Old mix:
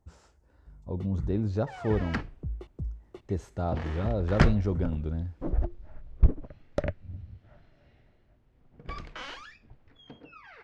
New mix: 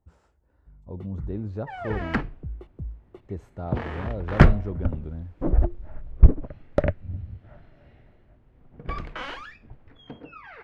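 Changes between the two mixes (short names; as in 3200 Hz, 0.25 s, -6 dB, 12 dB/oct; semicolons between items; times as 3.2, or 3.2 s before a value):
speech -3.5 dB; second sound +7.5 dB; master: add bell 5800 Hz -10.5 dB 1.6 oct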